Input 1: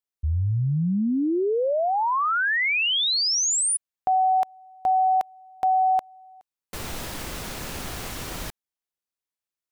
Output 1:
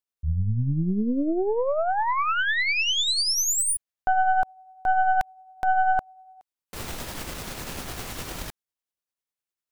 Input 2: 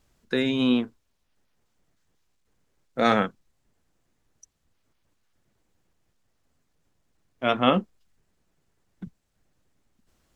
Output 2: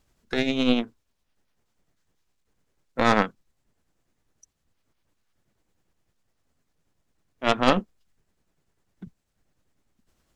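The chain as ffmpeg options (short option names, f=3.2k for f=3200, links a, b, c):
-af "tremolo=f=10:d=0.35,aeval=exprs='0.668*(cos(1*acos(clip(val(0)/0.668,-1,1)))-cos(1*PI/2))+0.133*(cos(6*acos(clip(val(0)/0.668,-1,1)))-cos(6*PI/2))':c=same"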